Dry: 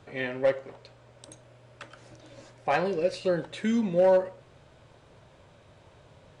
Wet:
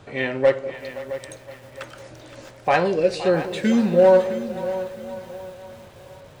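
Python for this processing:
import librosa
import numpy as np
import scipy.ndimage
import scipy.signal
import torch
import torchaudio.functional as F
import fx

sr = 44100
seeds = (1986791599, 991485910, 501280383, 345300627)

y = fx.transient(x, sr, attack_db=-1, sustain_db=6, at=(1.83, 2.37))
y = fx.echo_split(y, sr, split_hz=580.0, low_ms=194, high_ms=519, feedback_pct=52, wet_db=-13.5)
y = fx.echo_crushed(y, sr, ms=664, feedback_pct=35, bits=8, wet_db=-13.0)
y = y * librosa.db_to_amplitude(7.0)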